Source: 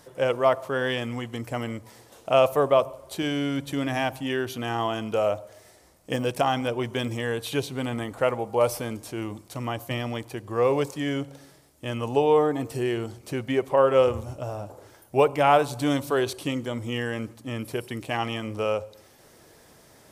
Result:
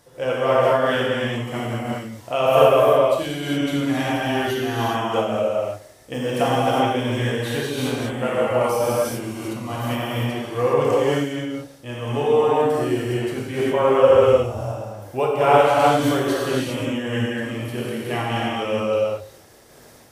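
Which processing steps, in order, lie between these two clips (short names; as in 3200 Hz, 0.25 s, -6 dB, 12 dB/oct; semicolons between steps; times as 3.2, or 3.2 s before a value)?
non-linear reverb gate 0.44 s flat, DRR -8 dB; noise-modulated level, depth 60%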